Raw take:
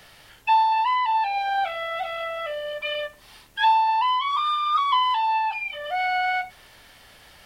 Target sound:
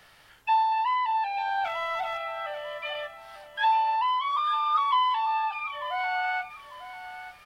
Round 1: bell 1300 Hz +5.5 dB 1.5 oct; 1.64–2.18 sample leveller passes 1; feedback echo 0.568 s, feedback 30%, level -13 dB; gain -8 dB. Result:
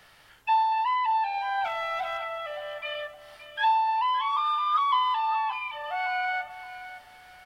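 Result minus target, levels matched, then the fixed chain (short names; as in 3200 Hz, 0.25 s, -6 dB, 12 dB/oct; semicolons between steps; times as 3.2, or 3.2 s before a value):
echo 0.327 s early
bell 1300 Hz +5.5 dB 1.5 oct; 1.64–2.18 sample leveller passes 1; feedback echo 0.895 s, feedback 30%, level -13 dB; gain -8 dB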